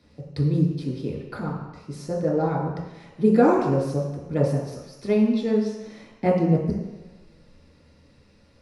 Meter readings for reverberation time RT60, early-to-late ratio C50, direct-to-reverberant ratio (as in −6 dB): 1.1 s, 2.5 dB, −5.5 dB